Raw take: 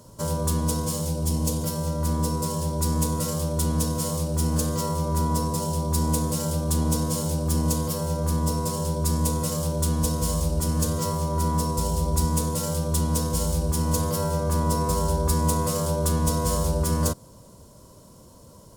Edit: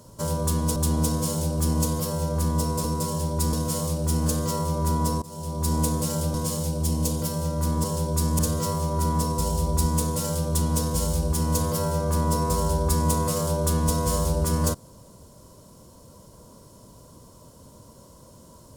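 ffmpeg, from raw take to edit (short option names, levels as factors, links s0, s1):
-filter_complex "[0:a]asplit=8[s0][s1][s2][s3][s4][s5][s6][s7];[s0]atrim=end=0.762[s8];[s1]atrim=start=6.638:end=8.722[s9];[s2]atrim=start=2.258:end=2.952[s10];[s3]atrim=start=3.828:end=5.52,asetpts=PTS-STARTPTS,afade=t=out:st=1.688:d=0.004:c=hsin:silence=0.0841395[s11];[s4]atrim=start=5.52:end=6.642,asetpts=PTS-STARTPTS,afade=t=in:d=0.52:silence=0.0841395[s12];[s5]atrim=start=0.758:end=2.262[s13];[s6]atrim=start=8.718:end=9.272[s14];[s7]atrim=start=10.778[s15];[s8][s9]acrossfade=d=0.004:c1=hsin:c2=hsin[s16];[s16][s10]acrossfade=d=0.004:c1=hsin:c2=hsin[s17];[s11][s12]concat=n=2:v=0:a=1[s18];[s17][s18]acrossfade=d=0.004:c1=hsin:c2=hsin[s19];[s19][s13]acrossfade=d=0.004:c1=hsin:c2=hsin[s20];[s20][s14]acrossfade=d=0.004:c1=hsin:c2=hsin[s21];[s21][s15]acrossfade=d=0.004:c1=hsin:c2=hsin"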